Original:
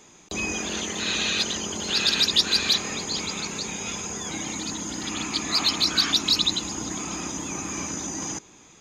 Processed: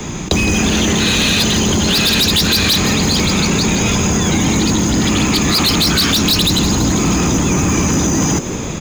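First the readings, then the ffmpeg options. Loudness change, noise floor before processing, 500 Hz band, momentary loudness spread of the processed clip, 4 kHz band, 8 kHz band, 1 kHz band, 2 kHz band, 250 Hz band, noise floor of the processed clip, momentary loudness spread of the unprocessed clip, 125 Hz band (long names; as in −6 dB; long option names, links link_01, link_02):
+11.0 dB, −52 dBFS, +16.0 dB, 3 LU, +8.0 dB, +11.0 dB, +13.0 dB, +11.5 dB, +19.0 dB, −23 dBFS, 11 LU, +23.5 dB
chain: -filter_complex "[0:a]bass=frequency=250:gain=14,treble=frequency=4000:gain=-3,acrusher=bits=7:mode=log:mix=0:aa=0.000001,acrossover=split=290|3000[link_01][link_02][link_03];[link_02]acompressor=threshold=-31dB:ratio=6[link_04];[link_01][link_04][link_03]amix=inputs=3:normalize=0,equalizer=frequency=13000:width_type=o:width=0.38:gain=-12.5,acrossover=split=170[link_05][link_06];[link_06]asoftclip=type=tanh:threshold=-21.5dB[link_07];[link_05][link_07]amix=inputs=2:normalize=0,apsyclip=27dB,acompressor=threshold=-10dB:ratio=8,asplit=2[link_08][link_09];[link_09]asplit=6[link_10][link_11][link_12][link_13][link_14][link_15];[link_10]adelay=165,afreqshift=86,volume=-12dB[link_16];[link_11]adelay=330,afreqshift=172,volume=-16.9dB[link_17];[link_12]adelay=495,afreqshift=258,volume=-21.8dB[link_18];[link_13]adelay=660,afreqshift=344,volume=-26.6dB[link_19];[link_14]adelay=825,afreqshift=430,volume=-31.5dB[link_20];[link_15]adelay=990,afreqshift=516,volume=-36.4dB[link_21];[link_16][link_17][link_18][link_19][link_20][link_21]amix=inputs=6:normalize=0[link_22];[link_08][link_22]amix=inputs=2:normalize=0,volume=-2.5dB"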